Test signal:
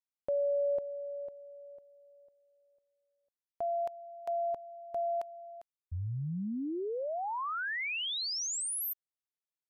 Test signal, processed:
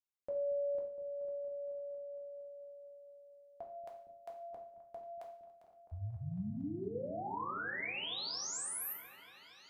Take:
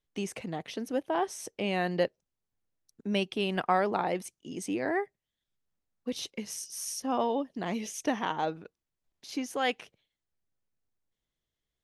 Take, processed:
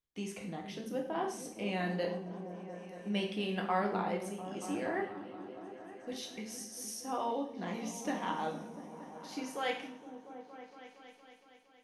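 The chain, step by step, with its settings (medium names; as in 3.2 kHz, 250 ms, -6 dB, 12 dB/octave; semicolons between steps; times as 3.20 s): on a send: delay with an opening low-pass 232 ms, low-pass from 200 Hz, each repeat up 1 oct, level -6 dB; on the sum: two-slope reverb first 0.54 s, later 1.7 s, from -25 dB, DRR 0 dB; trim -8.5 dB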